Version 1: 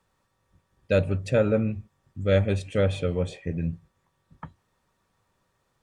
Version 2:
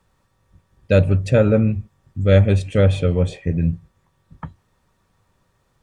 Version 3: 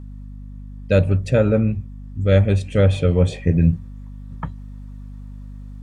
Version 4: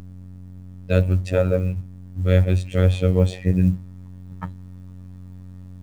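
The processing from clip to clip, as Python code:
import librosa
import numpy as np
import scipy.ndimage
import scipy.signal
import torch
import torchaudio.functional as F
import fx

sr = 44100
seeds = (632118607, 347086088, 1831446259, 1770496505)

y1 = fx.low_shelf(x, sr, hz=170.0, db=7.5)
y1 = F.gain(torch.from_numpy(y1), 5.0).numpy()
y2 = fx.rider(y1, sr, range_db=10, speed_s=0.5)
y2 = fx.add_hum(y2, sr, base_hz=50, snr_db=15)
y3 = fx.law_mismatch(y2, sr, coded='mu')
y3 = fx.robotise(y3, sr, hz=91.8)
y3 = F.gain(torch.from_numpy(y3), -1.0).numpy()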